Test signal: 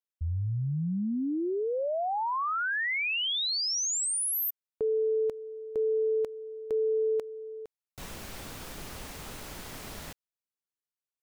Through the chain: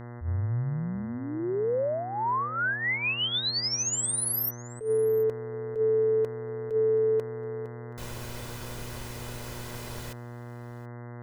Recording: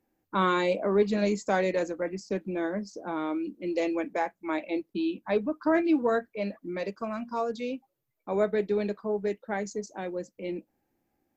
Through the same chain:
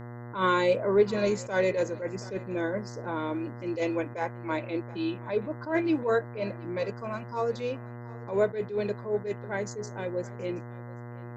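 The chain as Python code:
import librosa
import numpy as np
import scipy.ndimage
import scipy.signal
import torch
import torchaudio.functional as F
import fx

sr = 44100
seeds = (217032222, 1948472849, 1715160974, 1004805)

p1 = x + 0.5 * np.pad(x, (int(2.0 * sr / 1000.0), 0))[:len(x)]
p2 = fx.dmg_buzz(p1, sr, base_hz=120.0, harmonics=17, level_db=-41.0, tilt_db=-6, odd_only=False)
p3 = p2 + fx.echo_single(p2, sr, ms=727, db=-21.5, dry=0)
y = fx.attack_slew(p3, sr, db_per_s=150.0)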